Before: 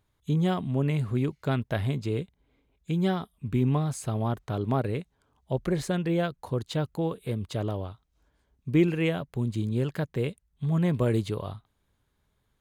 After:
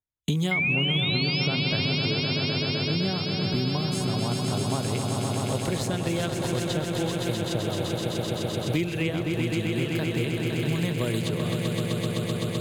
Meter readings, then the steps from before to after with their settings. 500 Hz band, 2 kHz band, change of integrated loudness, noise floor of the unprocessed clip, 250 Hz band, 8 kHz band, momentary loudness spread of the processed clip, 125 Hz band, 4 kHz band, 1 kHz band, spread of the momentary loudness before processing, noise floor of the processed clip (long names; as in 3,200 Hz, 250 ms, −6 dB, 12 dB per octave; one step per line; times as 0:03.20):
+1.5 dB, +10.0 dB, +2.5 dB, −74 dBFS, +1.5 dB, +10.5 dB, 5 LU, +1.5 dB, +16.0 dB, +2.0 dB, 9 LU, −31 dBFS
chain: noise gate −53 dBFS, range −51 dB
sound drawn into the spectrogram rise, 0:00.51–0:01.47, 2,100–5,600 Hz −22 dBFS
echo that builds up and dies away 128 ms, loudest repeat 5, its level −8 dB
multiband upward and downward compressor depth 100%
level −3.5 dB